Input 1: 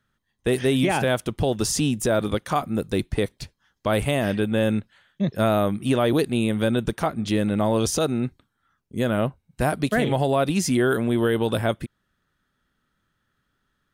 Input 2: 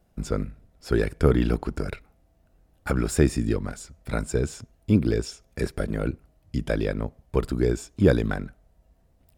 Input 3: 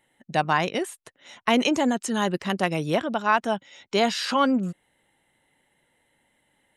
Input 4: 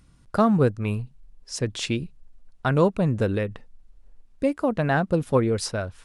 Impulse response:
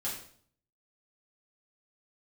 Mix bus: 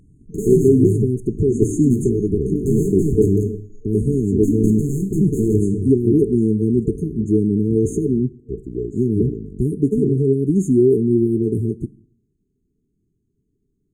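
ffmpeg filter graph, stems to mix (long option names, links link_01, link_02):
-filter_complex "[0:a]acontrast=85,volume=-3dB,asplit=2[link_01][link_02];[link_02]volume=-18.5dB[link_03];[1:a]adelay=1150,volume=-7dB,asplit=2[link_04][link_05];[link_05]volume=-15dB[link_06];[2:a]acompressor=threshold=-22dB:ratio=3,flanger=delay=20:depth=2.1:speed=1.6,volume=2.5dB[link_07];[3:a]aeval=exprs='(mod(6.68*val(0)+1,2)-1)/6.68':channel_layout=same,volume=1.5dB,asplit=2[link_08][link_09];[link_09]volume=-4dB[link_10];[4:a]atrim=start_sample=2205[link_11];[link_03][link_06][link_10]amix=inputs=3:normalize=0[link_12];[link_12][link_11]afir=irnorm=-1:irlink=0[link_13];[link_01][link_04][link_07][link_08][link_13]amix=inputs=5:normalize=0,aemphasis=mode=reproduction:type=75fm,afftfilt=real='re*(1-between(b*sr/4096,450,6300))':imag='im*(1-between(b*sr/4096,450,6300))':win_size=4096:overlap=0.75,equalizer=frequency=740:width_type=o:width=1.3:gain=11"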